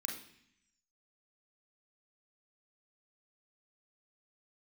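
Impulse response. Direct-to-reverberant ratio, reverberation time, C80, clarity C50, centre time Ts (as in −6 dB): −0.5 dB, 0.65 s, 10.0 dB, 6.0 dB, 32 ms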